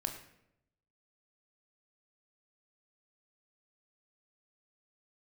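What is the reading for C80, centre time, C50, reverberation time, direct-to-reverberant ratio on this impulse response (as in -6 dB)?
10.5 dB, 19 ms, 8.0 dB, 0.80 s, 4.5 dB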